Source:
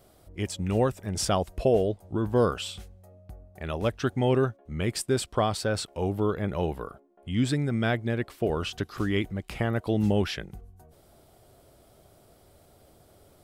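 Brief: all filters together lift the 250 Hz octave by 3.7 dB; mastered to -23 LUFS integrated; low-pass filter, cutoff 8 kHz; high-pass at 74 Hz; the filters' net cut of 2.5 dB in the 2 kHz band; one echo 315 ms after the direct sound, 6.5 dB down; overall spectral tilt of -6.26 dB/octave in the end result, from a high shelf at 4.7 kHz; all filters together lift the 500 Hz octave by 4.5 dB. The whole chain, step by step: high-pass 74 Hz; low-pass 8 kHz; peaking EQ 250 Hz +3.5 dB; peaking EQ 500 Hz +4.5 dB; peaking EQ 2 kHz -4.5 dB; treble shelf 4.7 kHz +4.5 dB; delay 315 ms -6.5 dB; trim +1.5 dB

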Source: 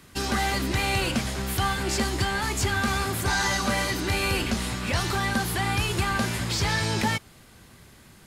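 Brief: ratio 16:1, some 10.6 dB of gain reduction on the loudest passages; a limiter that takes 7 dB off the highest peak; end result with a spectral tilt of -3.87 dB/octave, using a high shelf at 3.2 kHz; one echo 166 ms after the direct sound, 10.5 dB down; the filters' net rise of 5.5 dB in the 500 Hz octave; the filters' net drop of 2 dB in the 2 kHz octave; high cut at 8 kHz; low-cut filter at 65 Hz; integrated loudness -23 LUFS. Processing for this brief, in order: high-pass 65 Hz; low-pass 8 kHz; peaking EQ 500 Hz +7.5 dB; peaking EQ 2 kHz -4 dB; treble shelf 3.2 kHz +3 dB; compression 16:1, threshold -30 dBFS; peak limiter -27 dBFS; delay 166 ms -10.5 dB; trim +12.5 dB

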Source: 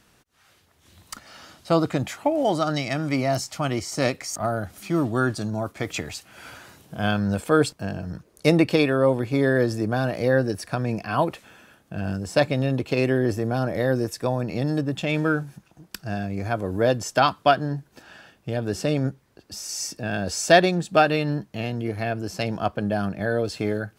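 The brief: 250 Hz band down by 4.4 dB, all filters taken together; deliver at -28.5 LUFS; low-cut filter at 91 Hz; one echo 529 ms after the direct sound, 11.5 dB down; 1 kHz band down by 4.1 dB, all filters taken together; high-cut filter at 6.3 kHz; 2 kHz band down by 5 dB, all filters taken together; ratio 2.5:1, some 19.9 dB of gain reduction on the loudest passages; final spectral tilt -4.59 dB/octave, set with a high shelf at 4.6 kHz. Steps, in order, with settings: high-pass 91 Hz; low-pass 6.3 kHz; peaking EQ 250 Hz -5.5 dB; peaking EQ 1 kHz -5 dB; peaking EQ 2 kHz -6 dB; treble shelf 4.6 kHz +7 dB; compression 2.5:1, threshold -45 dBFS; delay 529 ms -11.5 dB; trim +13.5 dB

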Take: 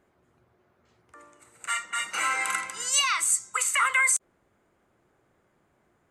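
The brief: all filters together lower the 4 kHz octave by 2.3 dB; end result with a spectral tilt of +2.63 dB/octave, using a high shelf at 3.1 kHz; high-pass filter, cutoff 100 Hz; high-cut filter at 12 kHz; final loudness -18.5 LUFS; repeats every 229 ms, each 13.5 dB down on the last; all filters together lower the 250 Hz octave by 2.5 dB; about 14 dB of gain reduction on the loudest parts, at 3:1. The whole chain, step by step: high-pass 100 Hz; low-pass 12 kHz; peaking EQ 250 Hz -3.5 dB; treble shelf 3.1 kHz +4.5 dB; peaking EQ 4 kHz -7.5 dB; compression 3:1, threshold -37 dBFS; feedback delay 229 ms, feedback 21%, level -13.5 dB; trim +16.5 dB

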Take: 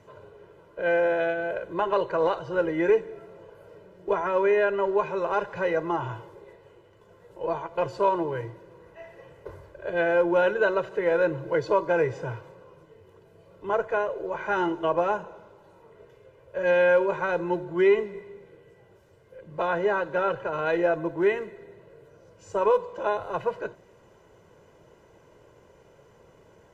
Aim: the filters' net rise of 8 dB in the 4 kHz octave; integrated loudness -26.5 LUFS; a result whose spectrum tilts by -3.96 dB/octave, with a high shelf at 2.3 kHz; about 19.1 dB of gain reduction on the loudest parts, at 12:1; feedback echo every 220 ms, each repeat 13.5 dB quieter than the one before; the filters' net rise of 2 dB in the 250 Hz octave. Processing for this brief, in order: peaking EQ 250 Hz +3.5 dB; treble shelf 2.3 kHz +6.5 dB; peaking EQ 4 kHz +5.5 dB; compression 12:1, threshold -35 dBFS; feedback delay 220 ms, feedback 21%, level -13.5 dB; trim +13.5 dB

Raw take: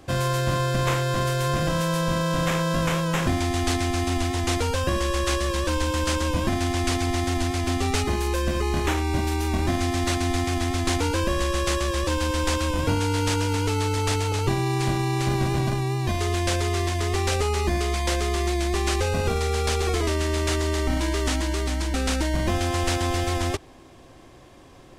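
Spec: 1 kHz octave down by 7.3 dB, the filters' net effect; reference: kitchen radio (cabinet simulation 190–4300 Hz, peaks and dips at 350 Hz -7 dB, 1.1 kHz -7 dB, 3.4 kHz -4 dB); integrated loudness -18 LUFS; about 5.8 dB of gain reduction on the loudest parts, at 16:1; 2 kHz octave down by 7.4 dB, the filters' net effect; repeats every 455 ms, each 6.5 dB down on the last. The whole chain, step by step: peaking EQ 1 kHz -5 dB; peaking EQ 2 kHz -7 dB; compression 16:1, threshold -25 dBFS; cabinet simulation 190–4300 Hz, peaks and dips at 350 Hz -7 dB, 1.1 kHz -7 dB, 3.4 kHz -4 dB; feedback delay 455 ms, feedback 47%, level -6.5 dB; trim +16.5 dB

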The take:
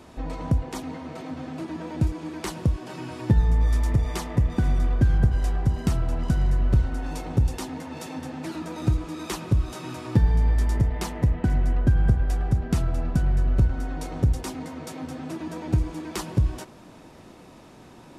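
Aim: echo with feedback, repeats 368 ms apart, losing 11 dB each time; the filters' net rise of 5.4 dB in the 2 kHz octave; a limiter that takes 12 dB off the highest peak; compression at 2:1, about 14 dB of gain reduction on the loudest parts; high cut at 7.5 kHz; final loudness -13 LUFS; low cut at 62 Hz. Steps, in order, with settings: high-pass 62 Hz; low-pass 7.5 kHz; peaking EQ 2 kHz +7 dB; compression 2:1, threshold -42 dBFS; peak limiter -32.5 dBFS; feedback delay 368 ms, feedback 28%, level -11 dB; trim +29 dB

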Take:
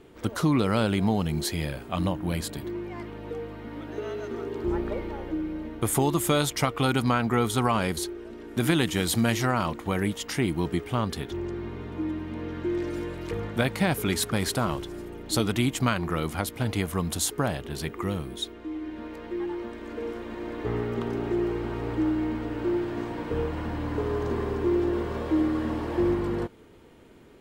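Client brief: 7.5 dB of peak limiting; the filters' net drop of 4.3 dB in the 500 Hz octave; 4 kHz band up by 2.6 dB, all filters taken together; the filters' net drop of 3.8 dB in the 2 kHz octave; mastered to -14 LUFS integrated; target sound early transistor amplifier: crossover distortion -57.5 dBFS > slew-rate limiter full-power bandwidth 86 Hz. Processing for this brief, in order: peaking EQ 500 Hz -6 dB; peaking EQ 2 kHz -6 dB; peaking EQ 4 kHz +5 dB; peak limiter -18 dBFS; crossover distortion -57.5 dBFS; slew-rate limiter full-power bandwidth 86 Hz; trim +18 dB

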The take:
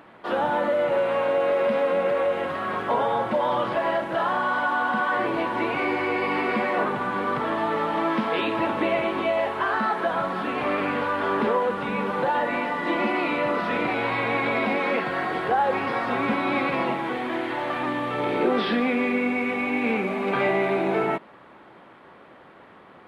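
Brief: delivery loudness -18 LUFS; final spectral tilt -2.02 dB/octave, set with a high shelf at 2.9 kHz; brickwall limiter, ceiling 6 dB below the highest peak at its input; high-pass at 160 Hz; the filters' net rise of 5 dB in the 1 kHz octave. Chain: high-pass 160 Hz; peaking EQ 1 kHz +5.5 dB; treble shelf 2.9 kHz +4.5 dB; trim +5.5 dB; peak limiter -9.5 dBFS

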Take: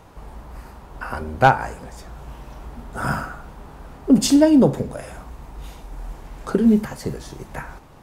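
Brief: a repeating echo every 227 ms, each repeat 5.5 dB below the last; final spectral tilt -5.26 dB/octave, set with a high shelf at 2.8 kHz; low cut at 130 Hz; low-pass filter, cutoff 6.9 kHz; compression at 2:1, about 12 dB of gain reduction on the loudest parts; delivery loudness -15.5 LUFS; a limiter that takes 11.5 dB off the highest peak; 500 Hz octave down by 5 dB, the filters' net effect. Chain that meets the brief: high-pass 130 Hz; low-pass 6.9 kHz; peaking EQ 500 Hz -6.5 dB; treble shelf 2.8 kHz -3 dB; compression 2:1, threshold -34 dBFS; peak limiter -24.5 dBFS; feedback delay 227 ms, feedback 53%, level -5.5 dB; trim +21 dB

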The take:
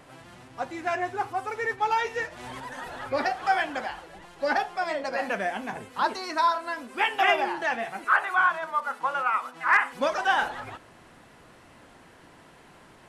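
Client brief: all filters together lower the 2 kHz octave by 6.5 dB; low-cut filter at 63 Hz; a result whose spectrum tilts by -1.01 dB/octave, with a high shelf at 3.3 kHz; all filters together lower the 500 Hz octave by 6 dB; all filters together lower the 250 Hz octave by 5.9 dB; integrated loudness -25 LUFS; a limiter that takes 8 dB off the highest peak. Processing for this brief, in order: high-pass 63 Hz; peaking EQ 250 Hz -5 dB; peaking EQ 500 Hz -6.5 dB; peaking EQ 2 kHz -7.5 dB; treble shelf 3.3 kHz -3 dB; trim +9 dB; peak limiter -13 dBFS

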